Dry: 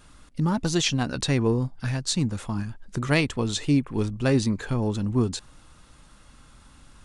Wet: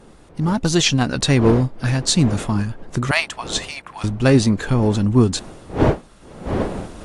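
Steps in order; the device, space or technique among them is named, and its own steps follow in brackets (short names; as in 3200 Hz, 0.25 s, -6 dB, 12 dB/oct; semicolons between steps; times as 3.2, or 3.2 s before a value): 3.11–4.04 elliptic high-pass 660 Hz, stop band 40 dB; smartphone video outdoors (wind noise 470 Hz; AGC gain up to 12 dB; gain -1 dB; AAC 64 kbps 44100 Hz)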